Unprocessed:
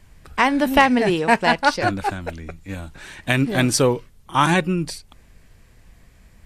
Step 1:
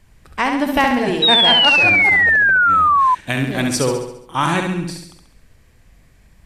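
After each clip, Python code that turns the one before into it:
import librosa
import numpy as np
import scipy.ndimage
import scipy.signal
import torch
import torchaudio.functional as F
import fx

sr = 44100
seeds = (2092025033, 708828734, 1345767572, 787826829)

y = fx.echo_feedback(x, sr, ms=68, feedback_pct=53, wet_db=-5.0)
y = fx.spec_paint(y, sr, seeds[0], shape='fall', start_s=1.22, length_s=1.93, low_hz=990.0, high_hz=3900.0, level_db=-11.0)
y = F.gain(torch.from_numpy(y), -2.0).numpy()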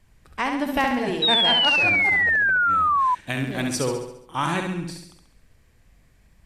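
y = fx.wow_flutter(x, sr, seeds[1], rate_hz=2.1, depth_cents=21.0)
y = F.gain(torch.from_numpy(y), -6.5).numpy()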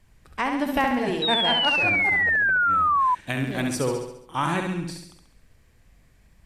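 y = fx.dynamic_eq(x, sr, hz=4900.0, q=0.73, threshold_db=-35.0, ratio=4.0, max_db=-6)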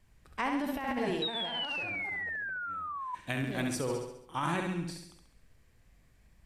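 y = fx.over_compress(x, sr, threshold_db=-24.0, ratio=-0.5)
y = fx.comb_fb(y, sr, f0_hz=57.0, decay_s=0.57, harmonics='all', damping=0.0, mix_pct=40)
y = F.gain(torch.from_numpy(y), -5.5).numpy()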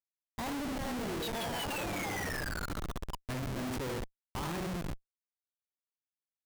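y = fx.schmitt(x, sr, flips_db=-34.0)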